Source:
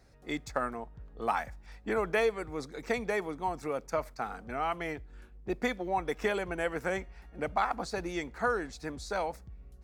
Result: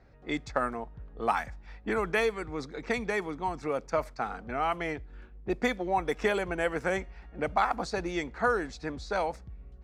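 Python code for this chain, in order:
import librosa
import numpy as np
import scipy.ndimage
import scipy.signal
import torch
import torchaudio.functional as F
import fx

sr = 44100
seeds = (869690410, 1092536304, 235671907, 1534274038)

y = fx.dynamic_eq(x, sr, hz=590.0, q=1.7, threshold_db=-42.0, ratio=4.0, max_db=-6, at=(1.31, 3.67))
y = fx.env_lowpass(y, sr, base_hz=2600.0, full_db=-26.5)
y = y * librosa.db_to_amplitude(3.0)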